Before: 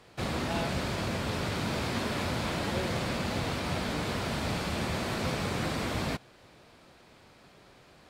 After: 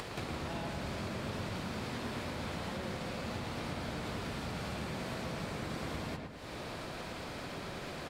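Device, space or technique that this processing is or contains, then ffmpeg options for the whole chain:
upward and downward compression: -filter_complex "[0:a]acompressor=mode=upward:threshold=-38dB:ratio=2.5,acompressor=threshold=-43dB:ratio=8,asplit=2[link_01][link_02];[link_02]adelay=112,lowpass=frequency=2400:poles=1,volume=-3dB,asplit=2[link_03][link_04];[link_04]adelay=112,lowpass=frequency=2400:poles=1,volume=0.51,asplit=2[link_05][link_06];[link_06]adelay=112,lowpass=frequency=2400:poles=1,volume=0.51,asplit=2[link_07][link_08];[link_08]adelay=112,lowpass=frequency=2400:poles=1,volume=0.51,asplit=2[link_09][link_10];[link_10]adelay=112,lowpass=frequency=2400:poles=1,volume=0.51,asplit=2[link_11][link_12];[link_12]adelay=112,lowpass=frequency=2400:poles=1,volume=0.51,asplit=2[link_13][link_14];[link_14]adelay=112,lowpass=frequency=2400:poles=1,volume=0.51[link_15];[link_01][link_03][link_05][link_07][link_09][link_11][link_13][link_15]amix=inputs=8:normalize=0,volume=4.5dB"

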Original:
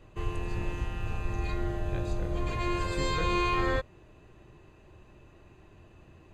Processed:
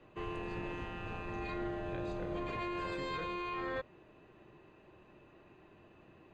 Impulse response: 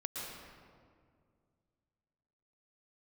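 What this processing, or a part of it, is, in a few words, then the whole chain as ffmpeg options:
DJ mixer with the lows and highs turned down: -filter_complex "[0:a]acrossover=split=150 4100:gain=0.178 1 0.158[link_01][link_02][link_03];[link_01][link_02][link_03]amix=inputs=3:normalize=0,alimiter=level_in=5dB:limit=-24dB:level=0:latency=1:release=25,volume=-5dB,volume=-1.5dB"

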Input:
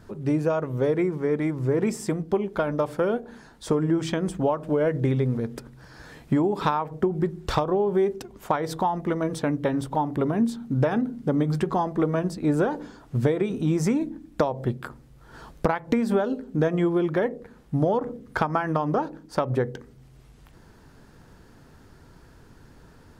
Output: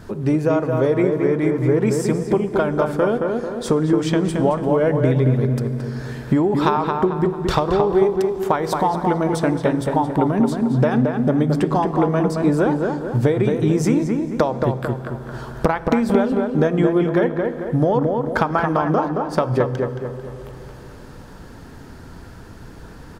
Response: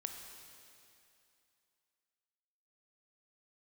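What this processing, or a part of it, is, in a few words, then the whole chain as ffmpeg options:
ducked reverb: -filter_complex "[0:a]asplit=2[link_01][link_02];[link_02]adelay=222,lowpass=frequency=2400:poles=1,volume=-4dB,asplit=2[link_03][link_04];[link_04]adelay=222,lowpass=frequency=2400:poles=1,volume=0.44,asplit=2[link_05][link_06];[link_06]adelay=222,lowpass=frequency=2400:poles=1,volume=0.44,asplit=2[link_07][link_08];[link_08]adelay=222,lowpass=frequency=2400:poles=1,volume=0.44,asplit=2[link_09][link_10];[link_10]adelay=222,lowpass=frequency=2400:poles=1,volume=0.44,asplit=2[link_11][link_12];[link_12]adelay=222,lowpass=frequency=2400:poles=1,volume=0.44[link_13];[link_01][link_03][link_05][link_07][link_09][link_11][link_13]amix=inputs=7:normalize=0,asplit=3[link_14][link_15][link_16];[1:a]atrim=start_sample=2205[link_17];[link_15][link_17]afir=irnorm=-1:irlink=0[link_18];[link_16]apad=whole_len=1081685[link_19];[link_18][link_19]sidechaincompress=threshold=-32dB:ratio=4:attack=25:release=947,volume=6dB[link_20];[link_14][link_20]amix=inputs=2:normalize=0,volume=2dB"

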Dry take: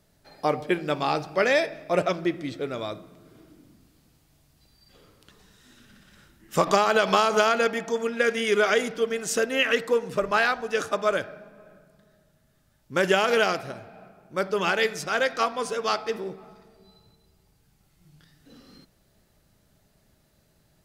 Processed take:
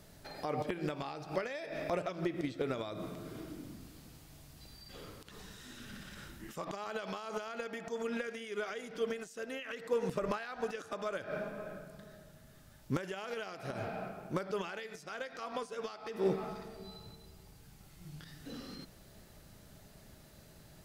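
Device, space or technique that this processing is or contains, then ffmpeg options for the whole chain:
de-esser from a sidechain: -filter_complex "[0:a]asplit=2[link_01][link_02];[link_02]highpass=4600,apad=whole_len=919350[link_03];[link_01][link_03]sidechaincompress=threshold=-59dB:ratio=12:attack=1.4:release=99,volume=7dB"

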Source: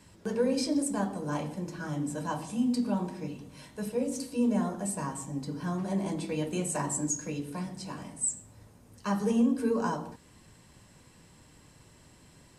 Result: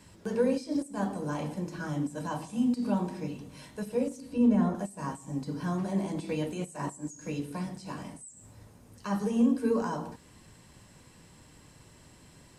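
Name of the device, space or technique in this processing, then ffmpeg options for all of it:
de-esser from a sidechain: -filter_complex "[0:a]asplit=2[link_01][link_02];[link_02]highpass=6400,apad=whole_len=554899[link_03];[link_01][link_03]sidechaincompress=threshold=-51dB:ratio=4:attack=0.5:release=76,asettb=1/sr,asplit=3[link_04][link_05][link_06];[link_04]atrim=end=4.204[link_07];[link_05]atrim=start=4.2:end=4.75,asetpts=PTS-STARTPTS,afade=type=in:duration=0.004:curve=qsin,afade=type=out:start_time=0.546:duration=0.004:curve=qsin,bass=frequency=250:gain=6,treble=frequency=4000:gain=-9[link_08];[link_06]atrim=start=4.746[link_09];[link_07][link_08]acrossfade=duration=0.004:curve1=hsin:curve2=qsin[link_10];[link_10][link_09]acrossfade=duration=0.004:curve1=qsin:curve2=hsin,volume=1.5dB"

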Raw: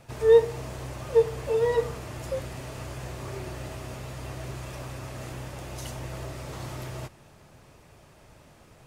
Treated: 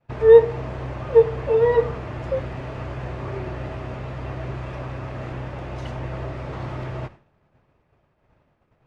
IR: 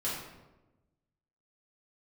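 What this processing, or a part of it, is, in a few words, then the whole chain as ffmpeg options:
hearing-loss simulation: -af "lowpass=2300,agate=range=-33dB:threshold=-42dB:ratio=3:detection=peak,volume=6.5dB"

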